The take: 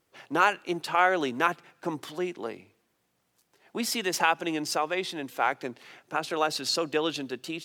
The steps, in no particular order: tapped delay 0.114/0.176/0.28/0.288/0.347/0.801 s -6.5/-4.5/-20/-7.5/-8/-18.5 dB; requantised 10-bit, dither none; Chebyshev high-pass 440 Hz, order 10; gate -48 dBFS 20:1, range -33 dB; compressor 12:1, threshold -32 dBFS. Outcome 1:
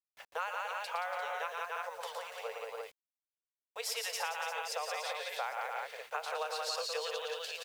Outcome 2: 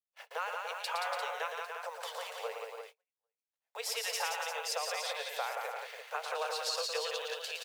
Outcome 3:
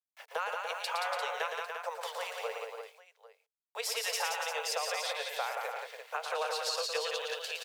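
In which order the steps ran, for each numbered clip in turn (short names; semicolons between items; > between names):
tapped delay > compressor > Chebyshev high-pass > gate > requantised; compressor > requantised > tapped delay > gate > Chebyshev high-pass; gate > requantised > Chebyshev high-pass > compressor > tapped delay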